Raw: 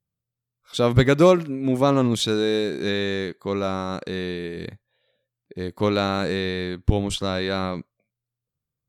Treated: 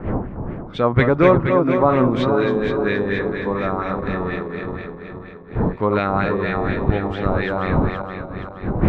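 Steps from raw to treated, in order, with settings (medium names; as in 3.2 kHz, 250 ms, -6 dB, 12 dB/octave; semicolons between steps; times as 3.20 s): backward echo that repeats 236 ms, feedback 68%, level -5 dB; wind noise 260 Hz -28 dBFS; LFO low-pass sine 4.2 Hz 920–2200 Hz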